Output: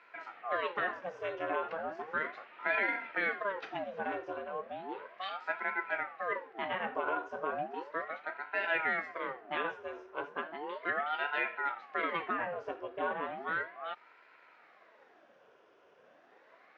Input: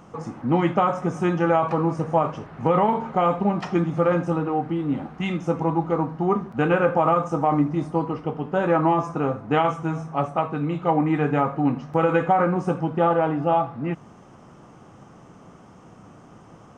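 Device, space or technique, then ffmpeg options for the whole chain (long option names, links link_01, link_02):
voice changer toy: -af "aeval=exprs='val(0)*sin(2*PI*700*n/s+700*0.7/0.35*sin(2*PI*0.35*n/s))':channel_layout=same,highpass=500,equalizer=frequency=860:width_type=q:width=4:gain=-8,equalizer=frequency=1200:width_type=q:width=4:gain=-4,equalizer=frequency=2700:width_type=q:width=4:gain=3,lowpass=frequency=4400:width=0.5412,lowpass=frequency=4400:width=1.3066,volume=-7dB"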